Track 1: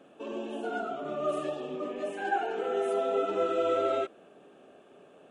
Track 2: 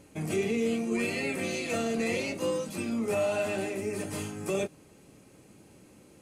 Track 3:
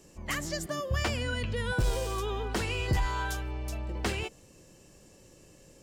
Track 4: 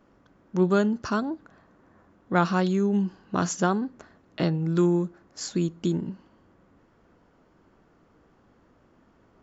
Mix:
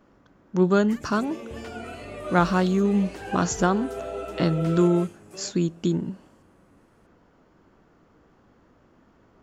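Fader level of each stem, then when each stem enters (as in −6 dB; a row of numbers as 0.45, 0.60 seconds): −5.5, −13.5, −13.0, +2.0 decibels; 1.00, 0.85, 0.60, 0.00 seconds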